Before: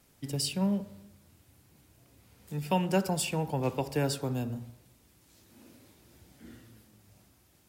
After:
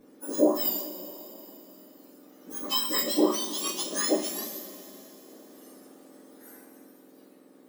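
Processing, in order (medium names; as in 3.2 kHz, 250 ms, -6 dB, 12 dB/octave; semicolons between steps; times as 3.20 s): spectrum inverted on a logarithmic axis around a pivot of 1.7 kHz; two-slope reverb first 0.23 s, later 3.6 s, from -21 dB, DRR -5.5 dB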